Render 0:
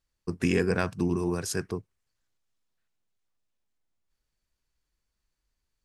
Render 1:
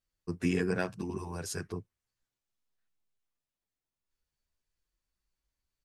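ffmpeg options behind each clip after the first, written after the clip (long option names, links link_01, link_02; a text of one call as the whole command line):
ffmpeg -i in.wav -filter_complex "[0:a]asplit=2[link_01][link_02];[link_02]adelay=9.7,afreqshift=0.64[link_03];[link_01][link_03]amix=inputs=2:normalize=1,volume=-2.5dB" out.wav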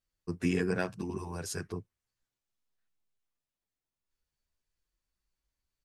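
ffmpeg -i in.wav -af anull out.wav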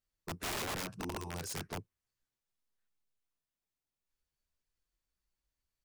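ffmpeg -i in.wav -af "aeval=exprs='(mod(31.6*val(0)+1,2)-1)/31.6':channel_layout=same,volume=-2.5dB" out.wav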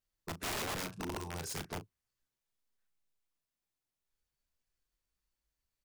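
ffmpeg -i in.wav -filter_complex "[0:a]asplit=2[link_01][link_02];[link_02]adelay=37,volume=-12dB[link_03];[link_01][link_03]amix=inputs=2:normalize=0" out.wav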